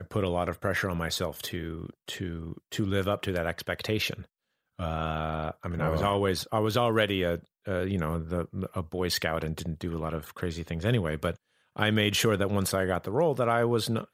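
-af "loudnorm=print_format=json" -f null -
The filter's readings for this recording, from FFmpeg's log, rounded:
"input_i" : "-28.8",
"input_tp" : "-7.5",
"input_lra" : "4.8",
"input_thresh" : "-39.1",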